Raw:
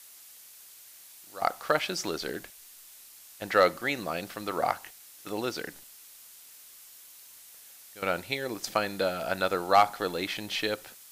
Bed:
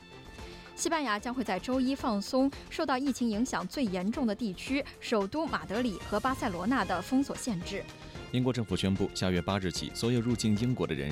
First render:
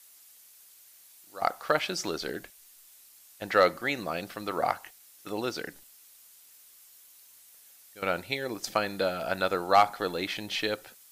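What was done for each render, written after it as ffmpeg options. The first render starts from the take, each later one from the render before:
ffmpeg -i in.wav -af "afftdn=noise_reduction=6:noise_floor=-52" out.wav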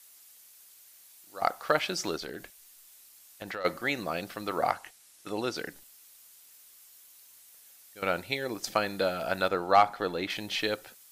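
ffmpeg -i in.wav -filter_complex "[0:a]asplit=3[link_01][link_02][link_03];[link_01]afade=type=out:start_time=2.16:duration=0.02[link_04];[link_02]acompressor=threshold=-34dB:ratio=6:attack=3.2:release=140:knee=1:detection=peak,afade=type=in:start_time=2.16:duration=0.02,afade=type=out:start_time=3.64:duration=0.02[link_05];[link_03]afade=type=in:start_time=3.64:duration=0.02[link_06];[link_04][link_05][link_06]amix=inputs=3:normalize=0,asettb=1/sr,asplit=3[link_07][link_08][link_09];[link_07]atrim=end=4.704[link_10];[link_08]atrim=start=4.7:end=5.56,asetpts=PTS-STARTPTS,afade=type=in:duration=0.004:curve=qsin,afade=type=out:start_time=0.856:duration=0.004:curve=qsin,lowpass=frequency=12000:width=0.5412,lowpass=frequency=12000:width=1.3066[link_11];[link_09]atrim=start=5.556[link_12];[link_10][link_11]acrossfade=duration=0.004:curve1=hsin:curve2=qsin[link_13];[link_13][link_12]acrossfade=duration=0.004:curve1=qsin:curve2=hsin,asettb=1/sr,asplit=3[link_14][link_15][link_16];[link_14]atrim=end=9.484[link_17];[link_15]atrim=start=9.48:end=10.3,asetpts=PTS-STARTPTS,afade=type=in:duration=0.004:curve=qsin,afade=type=out:start_time=0.816:duration=0.004:curve=qsin,highshelf=frequency=5400:gain=-10[link_18];[link_16]atrim=start=10.296[link_19];[link_17][link_18]acrossfade=duration=0.004:curve1=hsin:curve2=qsin[link_20];[link_20][link_19]acrossfade=duration=0.004:curve1=qsin:curve2=hsin" out.wav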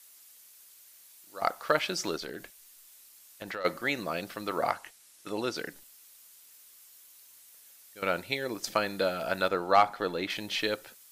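ffmpeg -i in.wav -af "equalizer=frequency=64:width_type=o:width=1.1:gain=-6,bandreject=frequency=760:width=12" out.wav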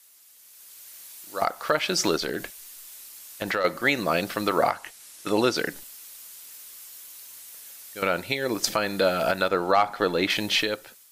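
ffmpeg -i in.wav -af "alimiter=limit=-20.5dB:level=0:latency=1:release=326,dynaudnorm=framelen=190:gausssize=7:maxgain=11dB" out.wav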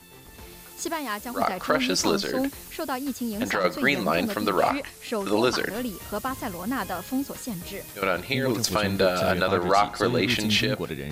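ffmpeg -i in.wav -i bed.wav -filter_complex "[1:a]volume=0dB[link_01];[0:a][link_01]amix=inputs=2:normalize=0" out.wav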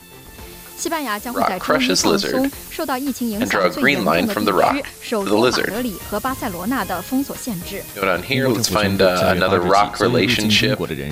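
ffmpeg -i in.wav -af "volume=7.5dB,alimiter=limit=-3dB:level=0:latency=1" out.wav

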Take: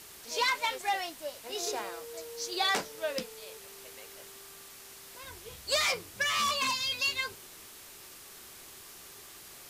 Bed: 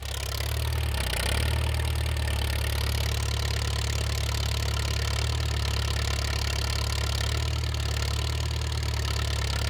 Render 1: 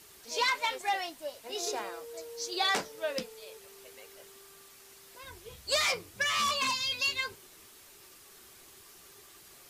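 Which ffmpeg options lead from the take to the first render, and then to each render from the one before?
ffmpeg -i in.wav -af "afftdn=noise_reduction=6:noise_floor=-50" out.wav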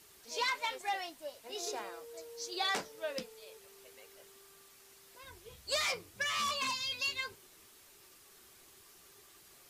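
ffmpeg -i in.wav -af "volume=-5dB" out.wav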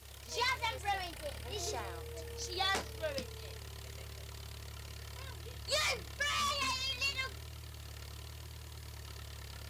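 ffmpeg -i in.wav -i bed.wav -filter_complex "[1:a]volume=-20dB[link_01];[0:a][link_01]amix=inputs=2:normalize=0" out.wav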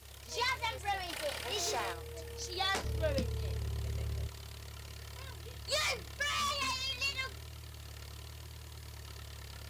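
ffmpeg -i in.wav -filter_complex "[0:a]asplit=3[link_01][link_02][link_03];[link_01]afade=type=out:start_time=1.08:duration=0.02[link_04];[link_02]asplit=2[link_05][link_06];[link_06]highpass=frequency=720:poles=1,volume=17dB,asoftclip=type=tanh:threshold=-26.5dB[link_07];[link_05][link_07]amix=inputs=2:normalize=0,lowpass=frequency=7100:poles=1,volume=-6dB,afade=type=in:start_time=1.08:duration=0.02,afade=type=out:start_time=1.92:duration=0.02[link_08];[link_03]afade=type=in:start_time=1.92:duration=0.02[link_09];[link_04][link_08][link_09]amix=inputs=3:normalize=0,asettb=1/sr,asplit=3[link_10][link_11][link_12];[link_10]atrim=end=2.844[link_13];[link_11]atrim=start=2.84:end=4.28,asetpts=PTS-STARTPTS,afade=type=in:duration=0.004:curve=qsin,afade=type=out:start_time=1.436:duration=0.004:curve=qsin,lowshelf=frequency=430:gain=12[link_14];[link_12]atrim=start=4.276[link_15];[link_13][link_14]acrossfade=duration=0.004:curve1=hsin:curve2=qsin[link_16];[link_16][link_15]acrossfade=duration=0.004:curve1=qsin:curve2=hsin,asettb=1/sr,asplit=3[link_17][link_18][link_19];[link_17]atrim=end=4.934[link_20];[link_18]atrim=start=4.93:end=6.85,asetpts=PTS-STARTPTS,afade=type=in:duration=0.004:curve=qsin,afade=type=out:start_time=1.916:duration=0.004:curve=qsin,acrusher=bits=8:mode=log:mix=0:aa=0.000001[link_21];[link_19]atrim=start=6.846[link_22];[link_20][link_21]acrossfade=duration=0.004:curve1=hsin:curve2=qsin[link_23];[link_23][link_22]acrossfade=duration=0.004:curve1=qsin:curve2=hsin" out.wav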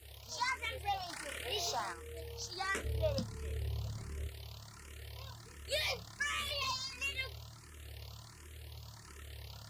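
ffmpeg -i in.wav -filter_complex "[0:a]asplit=2[link_01][link_02];[link_02]afreqshift=1.4[link_03];[link_01][link_03]amix=inputs=2:normalize=1" out.wav

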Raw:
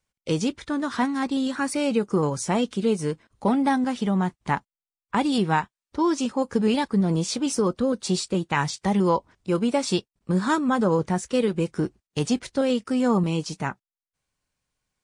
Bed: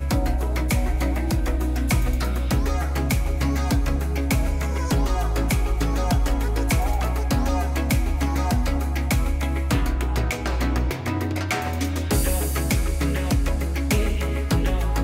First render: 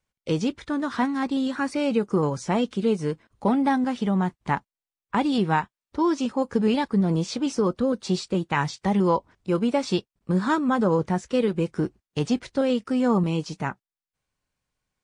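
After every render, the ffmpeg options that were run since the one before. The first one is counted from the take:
ffmpeg -i in.wav -filter_complex "[0:a]acrossover=split=7300[link_01][link_02];[link_02]acompressor=threshold=-53dB:ratio=4:attack=1:release=60[link_03];[link_01][link_03]amix=inputs=2:normalize=0,highshelf=frequency=4400:gain=-5.5" out.wav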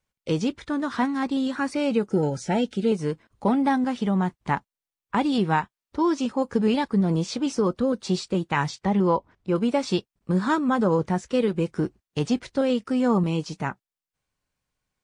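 ffmpeg -i in.wav -filter_complex "[0:a]asettb=1/sr,asplit=3[link_01][link_02][link_03];[link_01]atrim=end=2.104[link_04];[link_02]atrim=start=2.1:end=2.92,asetpts=PTS-STARTPTS,afade=type=in:duration=0.004:curve=qsin,afade=type=out:start_time=0.816:duration=0.004:curve=qsin,asuperstop=centerf=1100:order=20:qfactor=3.3[link_05];[link_03]atrim=start=2.916[link_06];[link_04][link_05]acrossfade=duration=0.004:curve1=hsin:curve2=qsin[link_07];[link_07][link_06]acrossfade=duration=0.004:curve1=qsin:curve2=hsin,asettb=1/sr,asplit=3[link_08][link_09][link_10];[link_08]atrim=end=8.794[link_11];[link_09]atrim=start=8.79:end=9.56,asetpts=PTS-STARTPTS,afade=type=in:duration=0.004:curve=qsin,afade=type=out:start_time=0.766:duration=0.004:curve=qsin,aemphasis=mode=reproduction:type=50kf[link_12];[link_10]atrim=start=9.556[link_13];[link_11][link_12]acrossfade=duration=0.004:curve1=hsin:curve2=qsin[link_14];[link_14][link_13]acrossfade=duration=0.004:curve1=qsin:curve2=hsin" out.wav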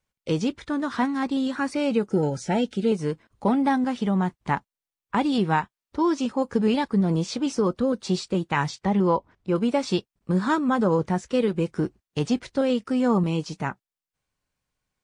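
ffmpeg -i in.wav -af anull out.wav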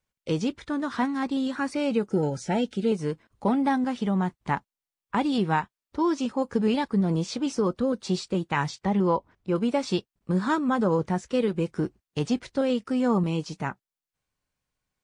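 ffmpeg -i in.wav -af "volume=-2dB" out.wav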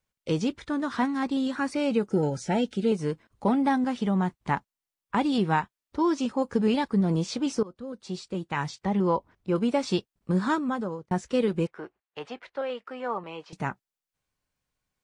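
ffmpeg -i in.wav -filter_complex "[0:a]asettb=1/sr,asplit=3[link_01][link_02][link_03];[link_01]atrim=end=11.674[link_04];[link_02]atrim=start=11.67:end=13.53,asetpts=PTS-STARTPTS,afade=type=in:duration=0.004:curve=qsin,afade=type=out:start_time=1.856:duration=0.004:curve=qsin,acrossover=split=500 3100:gain=0.0708 1 0.0794[link_05][link_06][link_07];[link_05][link_06][link_07]amix=inputs=3:normalize=0[link_08];[link_03]atrim=start=13.526[link_09];[link_04][link_08]acrossfade=duration=0.004:curve1=hsin:curve2=qsin[link_10];[link_10][link_09]acrossfade=duration=0.004:curve1=qsin:curve2=hsin,asplit=3[link_11][link_12][link_13];[link_11]atrim=end=7.63,asetpts=PTS-STARTPTS,afade=type=out:start_time=7.626:duration=0.004:curve=hsin:silence=0.0891251[link_14];[link_12]atrim=start=7.63:end=11.11,asetpts=PTS-STARTPTS,afade=type=in:duration=2.18:curve=qsin:silence=0.0891251,afade=type=out:start_time=2.83:duration=0.65[link_15];[link_13]atrim=start=11.11,asetpts=PTS-STARTPTS,afade=type=in:duration=0.004:curve=hsin[link_16];[link_14][link_15][link_16]concat=n=3:v=0:a=1" out.wav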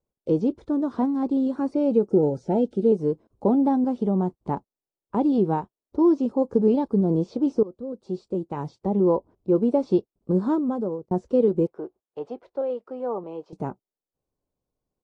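ffmpeg -i in.wav -filter_complex "[0:a]acrossover=split=4900[link_01][link_02];[link_02]acompressor=threshold=-55dB:ratio=4:attack=1:release=60[link_03];[link_01][link_03]amix=inputs=2:normalize=0,firequalizer=gain_entry='entry(150,0);entry(370,8);entry(1800,-20);entry(4500,-12)':delay=0.05:min_phase=1" out.wav

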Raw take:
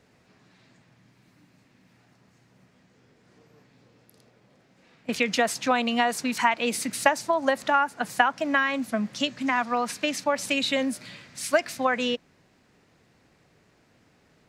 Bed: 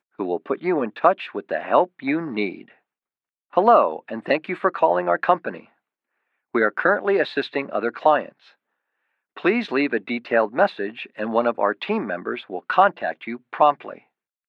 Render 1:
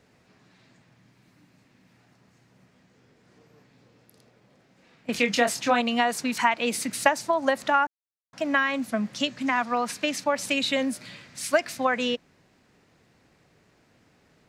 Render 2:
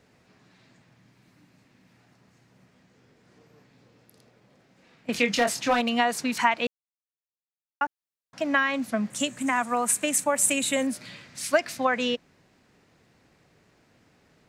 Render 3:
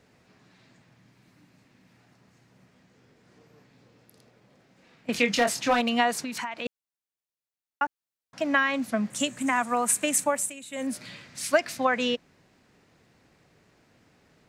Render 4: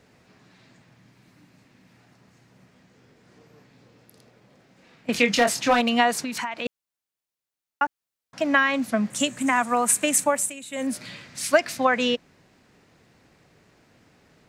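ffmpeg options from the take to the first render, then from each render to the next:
ffmpeg -i in.wav -filter_complex "[0:a]asettb=1/sr,asplit=3[link_01][link_02][link_03];[link_01]atrim=end=5.124[link_04];[link_02]atrim=start=5.12:end=5.81,asetpts=PTS-STARTPTS,afade=type=in:duration=0.004:curve=qsin,afade=type=out:start_time=0.686:duration=0.004:curve=qsin,asplit=2[link_05][link_06];[link_06]adelay=25,volume=-6dB[link_07];[link_05][link_07]amix=inputs=2:normalize=0,atrim=end_sample=30429[link_08];[link_03]atrim=start=5.806[link_09];[link_04][link_08]acrossfade=duration=0.004:curve1=hsin:curve2=qsin[link_10];[link_10][link_09]acrossfade=duration=0.004:curve1=qsin:curve2=hsin,asplit=3[link_11][link_12][link_13];[link_11]atrim=end=7.87,asetpts=PTS-STARTPTS,afade=type=out:start_time=7.866:duration=0.004:curve=hsin[link_14];[link_12]atrim=start=7.87:end=8.33,asetpts=PTS-STARTPTS,volume=0[link_15];[link_13]atrim=start=8.33,asetpts=PTS-STARTPTS,afade=type=in:duration=0.004:curve=hsin[link_16];[link_14][link_15][link_16]concat=n=3:v=0:a=1" out.wav
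ffmpeg -i in.wav -filter_complex "[0:a]asettb=1/sr,asplit=3[link_01][link_02][link_03];[link_01]atrim=end=5.314[link_04];[link_02]atrim=start=5.31:end=5.94,asetpts=PTS-STARTPTS,afade=type=in:duration=0.004:curve=qsin,afade=type=out:start_time=0.626:duration=0.004:curve=qsin,asoftclip=type=hard:threshold=-16.5dB[link_05];[link_03]atrim=start=5.936[link_06];[link_04][link_05]acrossfade=duration=0.004:curve1=hsin:curve2=qsin[link_07];[link_07][link_06]acrossfade=duration=0.004:curve1=qsin:curve2=hsin,asettb=1/sr,asplit=3[link_08][link_09][link_10];[link_08]atrim=end=9.104[link_11];[link_09]atrim=start=9.1:end=10.87,asetpts=PTS-STARTPTS,afade=type=in:duration=0.004:curve=qsin,afade=type=out:start_time=1.766:duration=0.004:curve=qsin,highshelf=frequency=6400:width_type=q:width=3:gain=10.5[link_12];[link_10]atrim=start=10.866[link_13];[link_11][link_12]acrossfade=duration=0.004:curve1=hsin:curve2=qsin[link_14];[link_14][link_13]acrossfade=duration=0.004:curve1=qsin:curve2=hsin,asplit=3[link_15][link_16][link_17];[link_15]atrim=end=6.67,asetpts=PTS-STARTPTS,afade=type=out:start_time=6.666:duration=0.004:curve=hsin[link_18];[link_16]atrim=start=6.67:end=7.81,asetpts=PTS-STARTPTS,volume=0[link_19];[link_17]atrim=start=7.81,asetpts=PTS-STARTPTS,afade=type=in:duration=0.004:curve=hsin[link_20];[link_18][link_19][link_20]concat=n=3:v=0:a=1" out.wav
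ffmpeg -i in.wav -filter_complex "[0:a]asplit=3[link_01][link_02][link_03];[link_01]afade=type=out:start_time=6.23:duration=0.02[link_04];[link_02]acompressor=threshold=-30dB:ratio=5:attack=3.2:release=140:knee=1:detection=peak,afade=type=in:start_time=6.23:duration=0.02,afade=type=out:start_time=6.65:duration=0.02[link_05];[link_03]afade=type=in:start_time=6.65:duration=0.02[link_06];[link_04][link_05][link_06]amix=inputs=3:normalize=0,asplit=3[link_07][link_08][link_09];[link_07]atrim=end=10.52,asetpts=PTS-STARTPTS,afade=type=out:start_time=10.28:duration=0.24:silence=0.149624[link_10];[link_08]atrim=start=10.52:end=10.71,asetpts=PTS-STARTPTS,volume=-16.5dB[link_11];[link_09]atrim=start=10.71,asetpts=PTS-STARTPTS,afade=type=in:duration=0.24:silence=0.149624[link_12];[link_10][link_11][link_12]concat=n=3:v=0:a=1" out.wav
ffmpeg -i in.wav -af "volume=3.5dB" out.wav

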